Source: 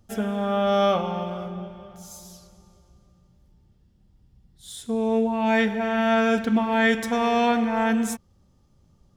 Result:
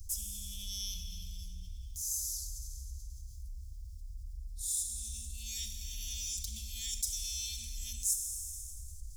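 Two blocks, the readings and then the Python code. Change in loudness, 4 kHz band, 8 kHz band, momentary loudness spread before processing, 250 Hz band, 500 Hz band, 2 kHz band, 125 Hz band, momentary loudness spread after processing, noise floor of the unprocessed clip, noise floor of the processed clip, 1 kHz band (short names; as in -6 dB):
-14.5 dB, -5.5 dB, +8.5 dB, 18 LU, -38.0 dB, under -40 dB, -30.0 dB, n/a, 16 LU, -61 dBFS, -46 dBFS, under -40 dB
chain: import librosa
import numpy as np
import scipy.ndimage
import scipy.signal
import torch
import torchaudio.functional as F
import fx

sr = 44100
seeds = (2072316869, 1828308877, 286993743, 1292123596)

y = scipy.signal.sosfilt(scipy.signal.cheby2(4, 70, [250.0, 1600.0], 'bandstop', fs=sr, output='sos'), x)
y = fx.rev_schroeder(y, sr, rt60_s=1.7, comb_ms=29, drr_db=11.5)
y = fx.env_flatten(y, sr, amount_pct=50)
y = y * 10.0 ** (3.5 / 20.0)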